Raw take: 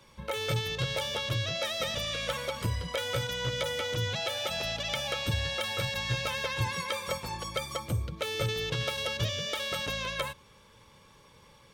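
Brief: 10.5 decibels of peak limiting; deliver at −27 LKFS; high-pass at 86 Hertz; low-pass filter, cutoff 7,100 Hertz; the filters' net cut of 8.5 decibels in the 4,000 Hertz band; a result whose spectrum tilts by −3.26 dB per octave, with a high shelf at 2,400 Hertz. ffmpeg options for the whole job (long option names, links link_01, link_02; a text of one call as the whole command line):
ffmpeg -i in.wav -af "highpass=86,lowpass=7100,highshelf=frequency=2400:gain=-6.5,equalizer=frequency=4000:width_type=o:gain=-5,volume=12dB,alimiter=limit=-18.5dB:level=0:latency=1" out.wav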